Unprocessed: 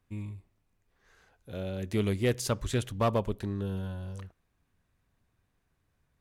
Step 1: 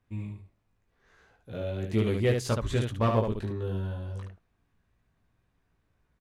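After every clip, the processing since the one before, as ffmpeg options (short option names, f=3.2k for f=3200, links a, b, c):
-af "lowpass=f=3.6k:p=1,aecho=1:1:18|73:0.668|0.596"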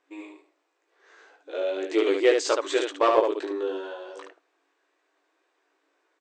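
-filter_complex "[0:a]afftfilt=real='re*between(b*sr/4096,290,8600)':imag='im*between(b*sr/4096,290,8600)':win_size=4096:overlap=0.75,asplit=2[a][b];[b]asoftclip=type=tanh:threshold=-23.5dB,volume=-11dB[c];[a][c]amix=inputs=2:normalize=0,volume=6dB"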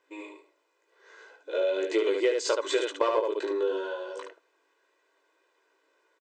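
-af "highpass=62,aecho=1:1:2:0.61,acompressor=threshold=-22dB:ratio=6"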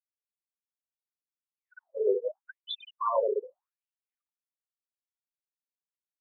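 -af "afftfilt=real='re*gte(hypot(re,im),0.0708)':imag='im*gte(hypot(re,im),0.0708)':win_size=1024:overlap=0.75,highshelf=f=4.5k:t=q:w=1.5:g=-12.5,afftfilt=real='re*between(b*sr/1024,520*pow(3800/520,0.5+0.5*sin(2*PI*0.82*pts/sr))/1.41,520*pow(3800/520,0.5+0.5*sin(2*PI*0.82*pts/sr))*1.41)':imag='im*between(b*sr/1024,520*pow(3800/520,0.5+0.5*sin(2*PI*0.82*pts/sr))/1.41,520*pow(3800/520,0.5+0.5*sin(2*PI*0.82*pts/sr))*1.41)':win_size=1024:overlap=0.75,volume=2dB"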